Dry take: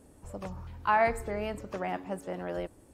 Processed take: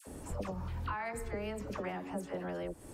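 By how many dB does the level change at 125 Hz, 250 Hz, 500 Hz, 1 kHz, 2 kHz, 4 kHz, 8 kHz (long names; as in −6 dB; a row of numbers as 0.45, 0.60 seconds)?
+0.5, −2.0, −7.0, −11.0, −9.0, −4.0, +0.5 decibels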